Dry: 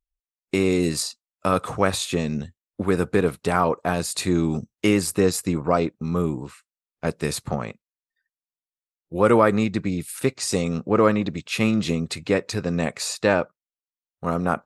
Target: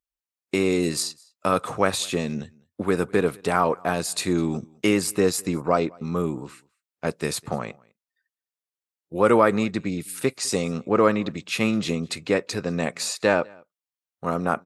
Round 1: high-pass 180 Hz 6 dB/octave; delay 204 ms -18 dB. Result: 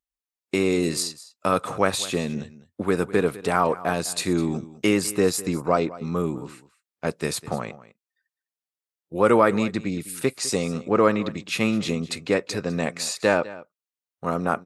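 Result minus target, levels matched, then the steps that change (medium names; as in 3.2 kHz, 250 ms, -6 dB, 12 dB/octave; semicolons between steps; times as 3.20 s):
echo-to-direct +9 dB
change: delay 204 ms -27 dB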